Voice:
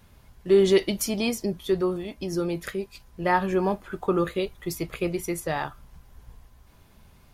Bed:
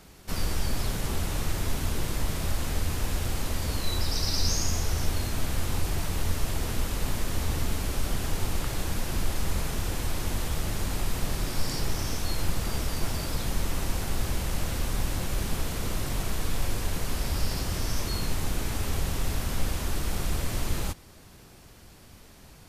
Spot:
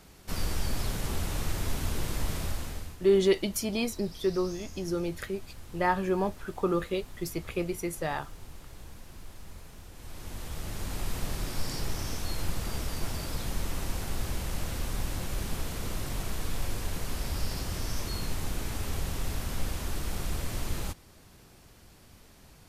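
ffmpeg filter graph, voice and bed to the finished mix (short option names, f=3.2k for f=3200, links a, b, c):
-filter_complex "[0:a]adelay=2550,volume=-4dB[a];[1:a]volume=12dB,afade=t=out:st=2.36:d=0.61:silence=0.158489,afade=t=in:st=9.93:d=1.18:silence=0.188365[b];[a][b]amix=inputs=2:normalize=0"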